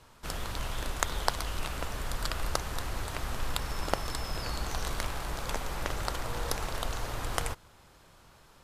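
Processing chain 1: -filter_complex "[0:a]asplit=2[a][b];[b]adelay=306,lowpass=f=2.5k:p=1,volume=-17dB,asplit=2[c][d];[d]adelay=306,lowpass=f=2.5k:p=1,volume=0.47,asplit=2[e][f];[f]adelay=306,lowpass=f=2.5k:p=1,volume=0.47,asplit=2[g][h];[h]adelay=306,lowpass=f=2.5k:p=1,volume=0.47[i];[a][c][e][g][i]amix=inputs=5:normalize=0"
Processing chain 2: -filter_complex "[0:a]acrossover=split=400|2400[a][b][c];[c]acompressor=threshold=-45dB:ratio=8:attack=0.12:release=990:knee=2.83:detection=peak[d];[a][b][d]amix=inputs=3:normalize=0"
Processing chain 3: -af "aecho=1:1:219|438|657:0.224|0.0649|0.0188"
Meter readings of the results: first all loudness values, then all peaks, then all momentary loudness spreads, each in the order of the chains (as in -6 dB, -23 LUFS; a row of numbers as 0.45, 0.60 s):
-35.0, -37.0, -35.0 LUFS; -4.5, -9.0, -4.5 dBFS; 4, 4, 4 LU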